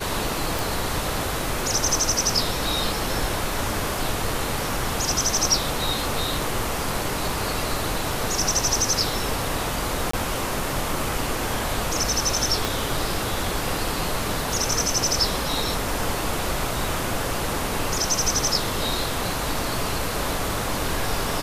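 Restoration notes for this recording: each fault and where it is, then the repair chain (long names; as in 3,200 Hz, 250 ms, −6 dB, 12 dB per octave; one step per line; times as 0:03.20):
0:00.59: click
0:10.11–0:10.13: drop-out 24 ms
0:12.65: click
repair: click removal
repair the gap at 0:10.11, 24 ms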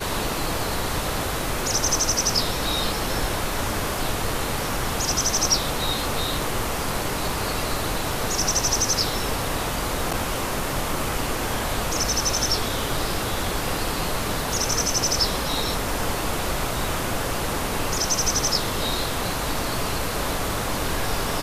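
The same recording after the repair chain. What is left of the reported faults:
0:12.65: click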